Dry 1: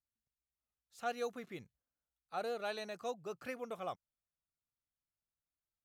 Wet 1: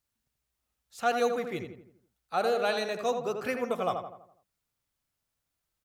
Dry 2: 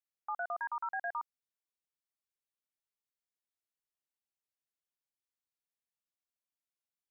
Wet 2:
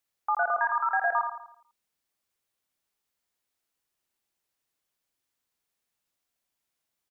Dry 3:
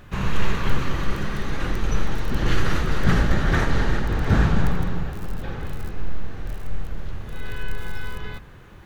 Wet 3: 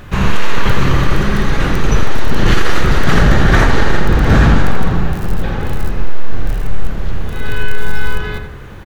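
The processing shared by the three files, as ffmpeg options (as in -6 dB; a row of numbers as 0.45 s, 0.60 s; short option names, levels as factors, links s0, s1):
-filter_complex "[0:a]asplit=2[s0][s1];[s1]adelay=83,lowpass=f=2100:p=1,volume=0.531,asplit=2[s2][s3];[s3]adelay=83,lowpass=f=2100:p=1,volume=0.48,asplit=2[s4][s5];[s5]adelay=83,lowpass=f=2100:p=1,volume=0.48,asplit=2[s6][s7];[s7]adelay=83,lowpass=f=2100:p=1,volume=0.48,asplit=2[s8][s9];[s9]adelay=83,lowpass=f=2100:p=1,volume=0.48,asplit=2[s10][s11];[s11]adelay=83,lowpass=f=2100:p=1,volume=0.48[s12];[s0][s2][s4][s6][s8][s10][s12]amix=inputs=7:normalize=0,apsyclip=4.73,volume=0.75"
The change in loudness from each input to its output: +12.0 LU, +11.5 LU, +10.0 LU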